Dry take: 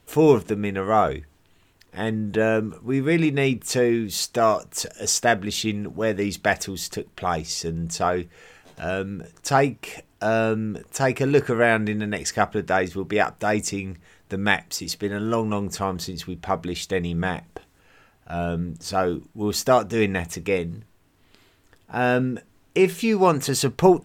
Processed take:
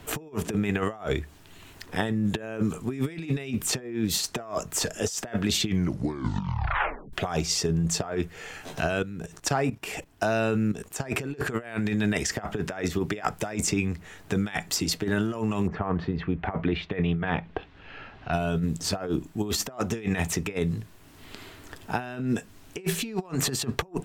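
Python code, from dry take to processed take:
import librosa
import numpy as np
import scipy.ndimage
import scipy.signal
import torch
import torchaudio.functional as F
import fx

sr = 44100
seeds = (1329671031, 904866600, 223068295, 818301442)

y = fx.level_steps(x, sr, step_db=14, at=(8.98, 11.0))
y = fx.lowpass(y, sr, hz=fx.line((15.66, 1700.0), (18.32, 4300.0)), slope=24, at=(15.66, 18.32), fade=0.02)
y = fx.edit(y, sr, fx.tape_stop(start_s=5.62, length_s=1.51), tone=tone)
y = fx.over_compress(y, sr, threshold_db=-27.0, ratio=-0.5)
y = fx.notch(y, sr, hz=500.0, q=12.0)
y = fx.band_squash(y, sr, depth_pct=40)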